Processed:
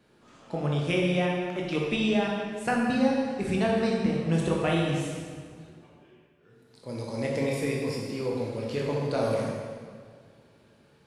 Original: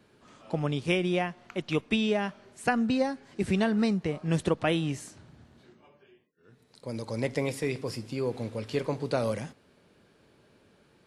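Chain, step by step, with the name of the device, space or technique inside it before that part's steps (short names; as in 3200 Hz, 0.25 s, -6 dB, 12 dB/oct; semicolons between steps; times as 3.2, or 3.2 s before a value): stairwell (reverb RT60 1.9 s, pre-delay 15 ms, DRR -3 dB); gain -3 dB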